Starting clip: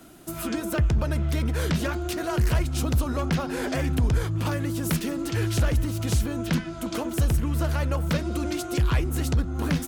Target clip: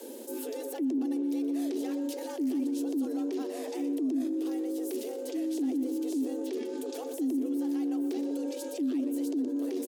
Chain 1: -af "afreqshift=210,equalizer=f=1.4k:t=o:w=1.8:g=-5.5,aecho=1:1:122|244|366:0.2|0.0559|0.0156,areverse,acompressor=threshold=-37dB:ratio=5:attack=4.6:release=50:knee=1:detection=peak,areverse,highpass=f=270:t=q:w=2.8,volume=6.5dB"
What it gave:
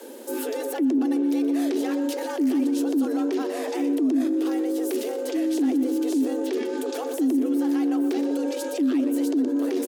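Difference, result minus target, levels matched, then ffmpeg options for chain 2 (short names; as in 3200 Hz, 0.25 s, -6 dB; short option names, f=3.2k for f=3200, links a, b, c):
compressor: peak gain reduction -6.5 dB; 1000 Hz band +3.5 dB
-af "afreqshift=210,equalizer=f=1.4k:t=o:w=1.8:g=-15.5,aecho=1:1:122|244|366:0.2|0.0559|0.0156,areverse,acompressor=threshold=-46.5dB:ratio=5:attack=4.6:release=50:knee=1:detection=peak,areverse,highpass=f=270:t=q:w=2.8,volume=6.5dB"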